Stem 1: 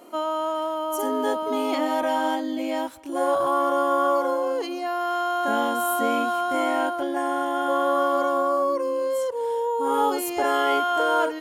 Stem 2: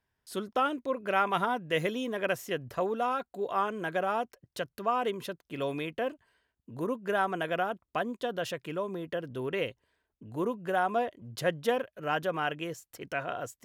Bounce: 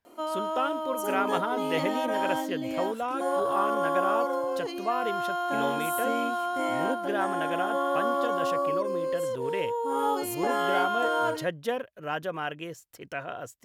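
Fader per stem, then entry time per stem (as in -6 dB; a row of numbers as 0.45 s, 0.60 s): -5.0 dB, -1.5 dB; 0.05 s, 0.00 s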